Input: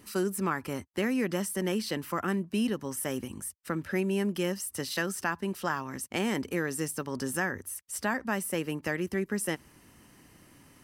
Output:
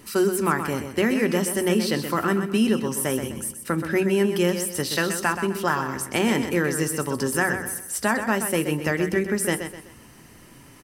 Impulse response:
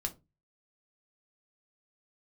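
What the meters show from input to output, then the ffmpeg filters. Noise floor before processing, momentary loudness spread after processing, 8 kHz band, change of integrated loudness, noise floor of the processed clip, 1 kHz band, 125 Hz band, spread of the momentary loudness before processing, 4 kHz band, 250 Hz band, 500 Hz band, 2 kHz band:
−59 dBFS, 6 LU, +8.0 dB, +8.0 dB, −48 dBFS, +8.5 dB, +8.0 dB, 5 LU, +8.0 dB, +7.5 dB, +9.0 dB, +8.0 dB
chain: -filter_complex "[0:a]aecho=1:1:127|254|381|508:0.376|0.135|0.0487|0.0175,asplit=2[link_01][link_02];[1:a]atrim=start_sample=2205[link_03];[link_02][link_03]afir=irnorm=-1:irlink=0,volume=-4dB[link_04];[link_01][link_04]amix=inputs=2:normalize=0,volume=3.5dB"

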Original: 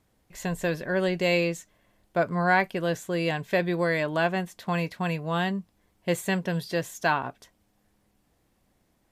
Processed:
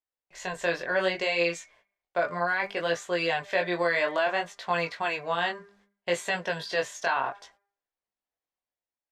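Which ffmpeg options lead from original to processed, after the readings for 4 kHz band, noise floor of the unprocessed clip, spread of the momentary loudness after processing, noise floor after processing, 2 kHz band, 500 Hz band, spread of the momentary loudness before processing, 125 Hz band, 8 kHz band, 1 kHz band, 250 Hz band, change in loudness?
+2.0 dB, −70 dBFS, 8 LU, below −85 dBFS, +1.0 dB, −1.0 dB, 8 LU, −13.0 dB, −1.0 dB, −0.5 dB, −9.0 dB, −1.0 dB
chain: -filter_complex "[0:a]agate=range=-26dB:threshold=-59dB:ratio=16:detection=peak,acrossover=split=470 7300:gain=0.1 1 0.0708[link_01][link_02][link_03];[link_01][link_02][link_03]amix=inputs=3:normalize=0,dynaudnorm=framelen=110:gausssize=9:maxgain=4.5dB,bandreject=frequency=200:width_type=h:width=4,bandreject=frequency=400:width_type=h:width=4,bandreject=frequency=600:width_type=h:width=4,bandreject=frequency=800:width_type=h:width=4,bandreject=frequency=1000:width_type=h:width=4,bandreject=frequency=1200:width_type=h:width=4,bandreject=frequency=1400:width_type=h:width=4,bandreject=frequency=1600:width_type=h:width=4,bandreject=frequency=1800:width_type=h:width=4,bandreject=frequency=2000:width_type=h:width=4,bandreject=frequency=2200:width_type=h:width=4,bandreject=frequency=2400:width_type=h:width=4,alimiter=limit=-17dB:level=0:latency=1:release=15,flanger=delay=17:depth=6.5:speed=0.64,lowshelf=frequency=71:gain=7.5,volume=3.5dB"

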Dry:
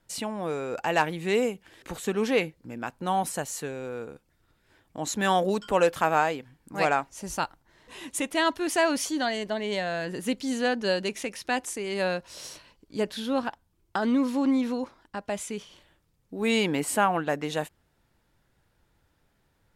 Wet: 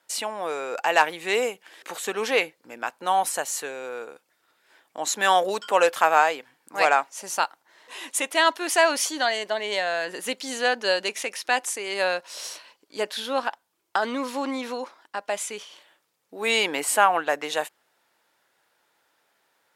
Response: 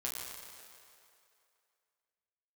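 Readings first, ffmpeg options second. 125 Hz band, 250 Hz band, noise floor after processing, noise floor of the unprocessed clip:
below −10 dB, −7.5 dB, −71 dBFS, −70 dBFS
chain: -af "highpass=580,volume=6dB"

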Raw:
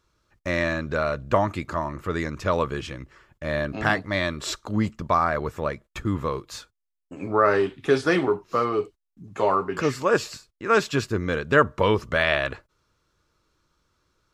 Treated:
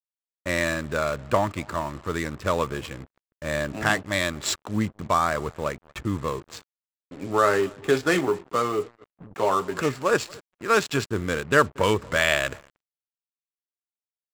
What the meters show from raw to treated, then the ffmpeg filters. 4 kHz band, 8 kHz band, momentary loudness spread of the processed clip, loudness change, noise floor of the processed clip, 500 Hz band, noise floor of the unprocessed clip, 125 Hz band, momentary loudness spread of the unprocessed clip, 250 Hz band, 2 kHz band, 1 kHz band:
+2.0 dB, +6.0 dB, 14 LU, −0.5 dB, below −85 dBFS, −1.5 dB, −80 dBFS, −2.0 dB, 13 LU, −1.5 dB, +0.5 dB, −0.5 dB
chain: -filter_complex "[0:a]highpass=51,highshelf=frequency=3100:gain=7.5,asplit=2[link_01][link_02];[link_02]adelay=234,lowpass=frequency=3100:poles=1,volume=-23.5dB,asplit=2[link_03][link_04];[link_04]adelay=234,lowpass=frequency=3100:poles=1,volume=0.37[link_05];[link_01][link_03][link_05]amix=inputs=3:normalize=0,adynamicsmooth=sensitivity=5.5:basefreq=720,acrusher=bits=6:mix=0:aa=0.5,equalizer=frequency=7500:width_type=o:width=0.22:gain=8,volume=-1.5dB"

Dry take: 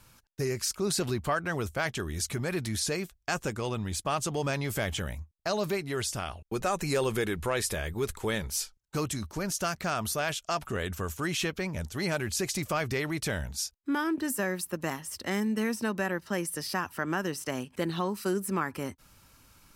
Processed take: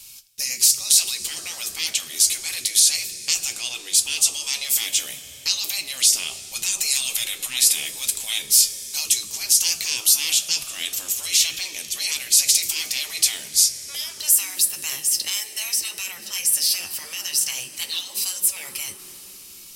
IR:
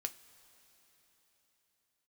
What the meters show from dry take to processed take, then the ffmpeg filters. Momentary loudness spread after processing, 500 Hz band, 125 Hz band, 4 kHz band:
12 LU, −17.0 dB, below −15 dB, +16.0 dB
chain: -filter_complex "[1:a]atrim=start_sample=2205,asetrate=48510,aresample=44100[link_01];[0:a][link_01]afir=irnorm=-1:irlink=0,afftfilt=real='re*lt(hypot(re,im),0.0501)':imag='im*lt(hypot(re,im),0.0501)':win_size=1024:overlap=0.75,aexciter=amount=9.5:drive=5.8:freq=2300,volume=-1.5dB"

